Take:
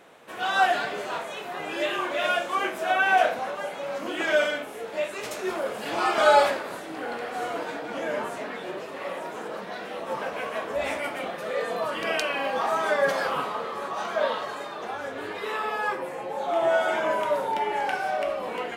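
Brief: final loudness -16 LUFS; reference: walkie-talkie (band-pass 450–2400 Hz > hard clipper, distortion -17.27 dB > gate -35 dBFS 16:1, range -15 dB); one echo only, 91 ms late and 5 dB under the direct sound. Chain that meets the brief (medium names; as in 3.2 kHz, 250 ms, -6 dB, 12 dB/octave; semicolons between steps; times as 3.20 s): band-pass 450–2400 Hz; delay 91 ms -5 dB; hard clipper -14.5 dBFS; gate -35 dBFS 16:1, range -15 dB; trim +11.5 dB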